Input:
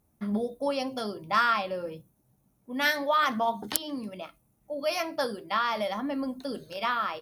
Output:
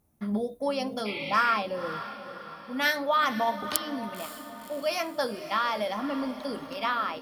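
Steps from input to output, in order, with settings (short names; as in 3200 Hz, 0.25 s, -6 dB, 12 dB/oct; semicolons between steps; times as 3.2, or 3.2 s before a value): diffused feedback echo 0.529 s, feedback 50%, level -12 dB; spectral repair 1.08–1.53, 2000–4600 Hz after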